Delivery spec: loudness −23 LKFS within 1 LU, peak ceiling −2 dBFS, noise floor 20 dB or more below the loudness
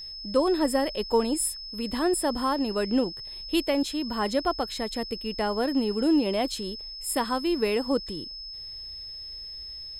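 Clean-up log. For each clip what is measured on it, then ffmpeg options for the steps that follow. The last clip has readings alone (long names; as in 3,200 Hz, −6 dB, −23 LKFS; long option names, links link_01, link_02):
interfering tone 5,200 Hz; level of the tone −37 dBFS; integrated loudness −27.5 LKFS; sample peak −11.0 dBFS; target loudness −23.0 LKFS
→ -af "bandreject=frequency=5200:width=30"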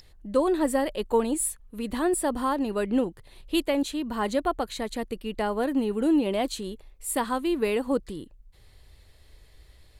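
interfering tone none found; integrated loudness −27.0 LKFS; sample peak −11.0 dBFS; target loudness −23.0 LKFS
→ -af "volume=4dB"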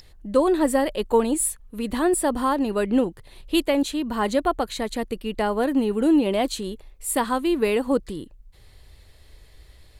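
integrated loudness −23.0 LKFS; sample peak −7.0 dBFS; background noise floor −52 dBFS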